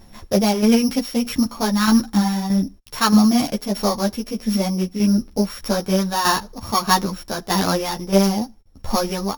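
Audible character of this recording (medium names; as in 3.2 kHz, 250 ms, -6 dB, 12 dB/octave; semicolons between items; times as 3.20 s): a buzz of ramps at a fixed pitch in blocks of 8 samples; tremolo saw down 1.6 Hz, depth 60%; a shimmering, thickened sound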